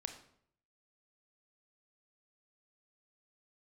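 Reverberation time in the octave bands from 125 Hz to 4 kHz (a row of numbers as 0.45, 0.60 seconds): 0.85, 0.70, 0.70, 0.60, 0.55, 0.50 seconds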